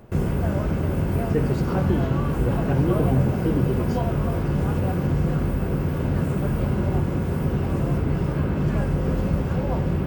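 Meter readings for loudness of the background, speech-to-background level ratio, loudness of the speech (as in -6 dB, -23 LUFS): -24.0 LUFS, -3.0 dB, -27.0 LUFS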